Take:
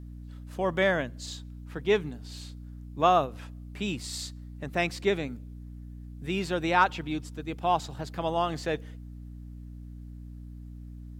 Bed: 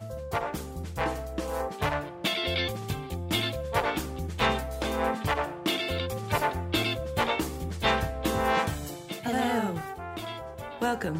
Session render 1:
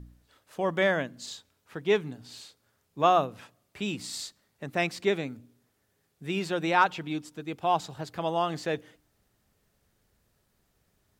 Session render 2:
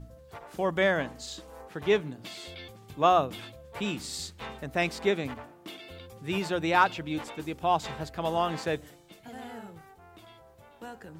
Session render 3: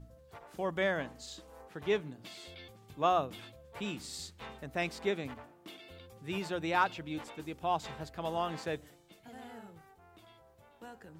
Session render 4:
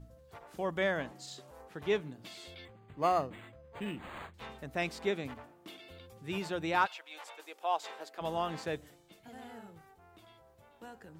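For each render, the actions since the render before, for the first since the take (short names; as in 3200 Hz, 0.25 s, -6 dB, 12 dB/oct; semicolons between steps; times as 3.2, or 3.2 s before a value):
de-hum 60 Hz, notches 5
add bed -15.5 dB
gain -6.5 dB
1.11–1.51 frequency shift +70 Hz; 2.65–4.34 decimation joined by straight lines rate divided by 8×; 6.85–8.2 HPF 730 Hz -> 320 Hz 24 dB/oct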